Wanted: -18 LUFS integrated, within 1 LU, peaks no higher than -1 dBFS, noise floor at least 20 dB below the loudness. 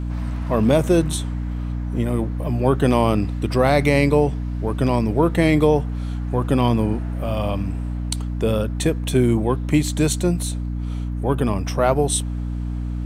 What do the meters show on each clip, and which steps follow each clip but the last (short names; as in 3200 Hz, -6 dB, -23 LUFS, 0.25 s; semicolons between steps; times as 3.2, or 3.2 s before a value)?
hum 60 Hz; harmonics up to 300 Hz; hum level -23 dBFS; loudness -21.0 LUFS; peak -2.0 dBFS; loudness target -18.0 LUFS
-> notches 60/120/180/240/300 Hz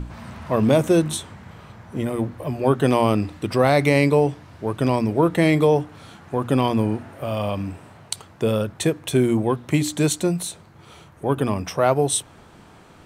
hum none; loudness -21.5 LUFS; peak -3.0 dBFS; loudness target -18.0 LUFS
-> gain +3.5 dB; limiter -1 dBFS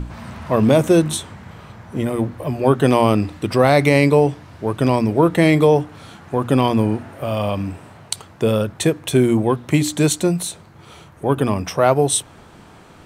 loudness -18.0 LUFS; peak -1.0 dBFS; noise floor -45 dBFS